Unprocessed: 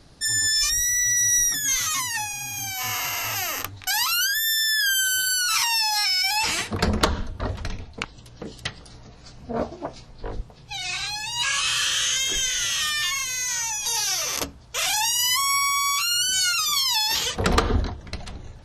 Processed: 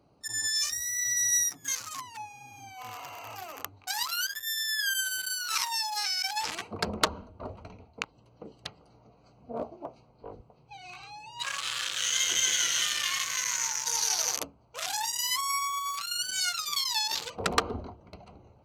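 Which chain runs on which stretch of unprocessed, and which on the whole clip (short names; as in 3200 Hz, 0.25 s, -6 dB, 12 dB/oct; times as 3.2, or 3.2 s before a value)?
11.98–14.36 ripple EQ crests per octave 1.9, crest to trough 7 dB + warbling echo 0.158 s, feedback 66%, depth 82 cents, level -3.5 dB
whole clip: Wiener smoothing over 25 samples; HPF 78 Hz; low shelf 380 Hz -12 dB; gain -2 dB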